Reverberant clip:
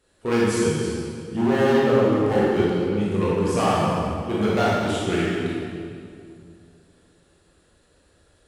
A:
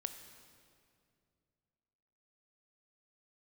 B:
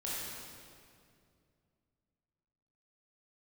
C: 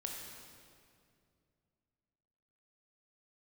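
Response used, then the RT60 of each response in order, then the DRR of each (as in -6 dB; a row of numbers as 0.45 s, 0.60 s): B; 2.4 s, 2.3 s, 2.3 s; 8.0 dB, -7.5 dB, 0.0 dB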